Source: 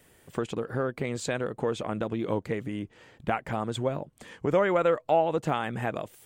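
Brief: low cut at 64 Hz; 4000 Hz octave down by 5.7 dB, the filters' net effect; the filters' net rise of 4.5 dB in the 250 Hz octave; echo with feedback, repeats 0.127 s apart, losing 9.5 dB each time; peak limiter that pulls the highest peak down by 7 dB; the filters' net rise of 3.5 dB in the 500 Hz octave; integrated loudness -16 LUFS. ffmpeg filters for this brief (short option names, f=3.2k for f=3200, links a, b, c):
-af "highpass=64,equalizer=f=250:t=o:g=5,equalizer=f=500:t=o:g=3,equalizer=f=4k:t=o:g=-7.5,alimiter=limit=-16.5dB:level=0:latency=1,aecho=1:1:127|254|381|508:0.335|0.111|0.0365|0.012,volume=12.5dB"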